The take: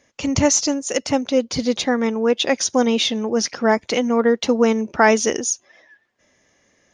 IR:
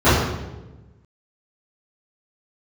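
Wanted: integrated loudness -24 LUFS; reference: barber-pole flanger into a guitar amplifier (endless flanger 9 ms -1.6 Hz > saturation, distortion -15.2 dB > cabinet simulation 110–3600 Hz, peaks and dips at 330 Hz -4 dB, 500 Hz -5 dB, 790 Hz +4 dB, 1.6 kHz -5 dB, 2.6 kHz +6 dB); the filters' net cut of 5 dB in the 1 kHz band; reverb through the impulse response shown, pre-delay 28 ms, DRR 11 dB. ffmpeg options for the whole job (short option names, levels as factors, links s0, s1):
-filter_complex "[0:a]equalizer=f=1000:t=o:g=-9,asplit=2[s0][s1];[1:a]atrim=start_sample=2205,adelay=28[s2];[s1][s2]afir=irnorm=-1:irlink=0,volume=0.0133[s3];[s0][s3]amix=inputs=2:normalize=0,asplit=2[s4][s5];[s5]adelay=9,afreqshift=-1.6[s6];[s4][s6]amix=inputs=2:normalize=1,asoftclip=threshold=0.168,highpass=110,equalizer=f=330:t=q:w=4:g=-4,equalizer=f=500:t=q:w=4:g=-5,equalizer=f=790:t=q:w=4:g=4,equalizer=f=1600:t=q:w=4:g=-5,equalizer=f=2600:t=q:w=4:g=6,lowpass=f=3600:w=0.5412,lowpass=f=3600:w=1.3066,volume=1.33"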